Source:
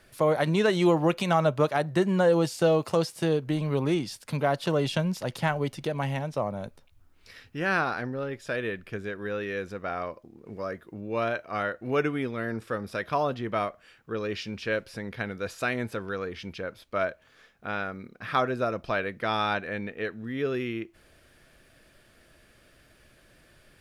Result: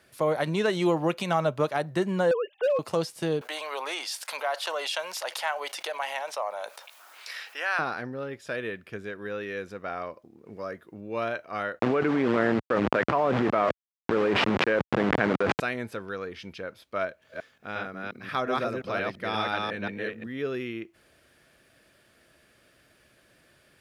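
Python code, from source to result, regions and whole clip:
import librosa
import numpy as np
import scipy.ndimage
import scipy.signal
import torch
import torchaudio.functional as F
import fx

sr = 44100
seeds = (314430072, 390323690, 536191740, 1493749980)

y = fx.chain(x, sr, fx.sine_speech(),
    fx.clip_hard(threshold_db=-18.0), at=(2.31, 2.79))
y = fx.chain(y, sr, fx.highpass(hz=650.0, slope=24),
    fx.env_flatten(amount_pct=50), at=(3.41, 7.79))
y = fx.chain(y, sr, fx.delta_hold(step_db=-33.0),
    fx.bandpass_edges(low_hz=150.0, high_hz=2200.0),
    fx.env_flatten(amount_pct=100), at=(11.79, 15.6))
y = fx.chain(y, sr, fx.reverse_delay(ms=177, wet_db=-0.5),
    fx.peak_eq(hz=980.0, db=-3.0, octaves=2.0), at=(17.05, 20.27))
y = scipy.signal.sosfilt(scipy.signal.butter(2, 54.0, 'highpass', fs=sr, output='sos'), y)
y = fx.low_shelf(y, sr, hz=130.0, db=-6.5)
y = y * 10.0 ** (-1.5 / 20.0)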